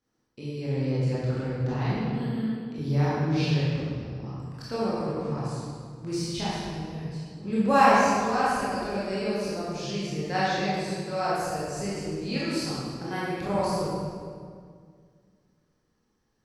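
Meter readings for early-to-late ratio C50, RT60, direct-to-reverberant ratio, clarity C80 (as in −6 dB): −3.5 dB, 2.1 s, −9.5 dB, −1.0 dB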